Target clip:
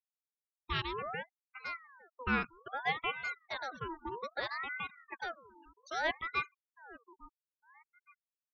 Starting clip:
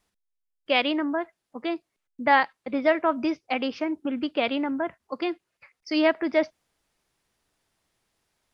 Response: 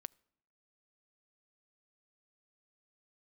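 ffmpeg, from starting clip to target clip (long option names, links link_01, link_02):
-filter_complex "[0:a]asplit=2[link_01][link_02];[link_02]adelay=858,lowpass=frequency=1000:poles=1,volume=-18dB,asplit=2[link_03][link_04];[link_04]adelay=858,lowpass=frequency=1000:poles=1,volume=0.42,asplit=2[link_05][link_06];[link_06]adelay=858,lowpass=frequency=1000:poles=1,volume=0.42[link_07];[link_01][link_03][link_05][link_07]amix=inputs=4:normalize=0[link_08];[1:a]atrim=start_sample=2205,atrim=end_sample=3528[link_09];[link_08][link_09]afir=irnorm=-1:irlink=0,afftfilt=real='re*gte(hypot(re,im),0.0126)':imag='im*gte(hypot(re,im),0.0126)':win_size=1024:overlap=0.75,aeval=exprs='val(0)*sin(2*PI*1200*n/s+1200*0.5/0.62*sin(2*PI*0.62*n/s))':channel_layout=same,volume=-4.5dB"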